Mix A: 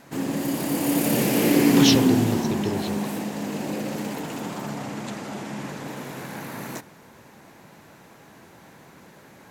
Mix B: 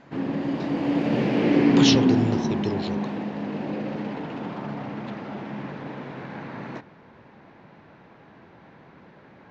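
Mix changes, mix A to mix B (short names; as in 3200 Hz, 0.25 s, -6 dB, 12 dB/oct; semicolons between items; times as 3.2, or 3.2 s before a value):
background: add air absorption 270 m; master: add LPF 5700 Hz 12 dB/oct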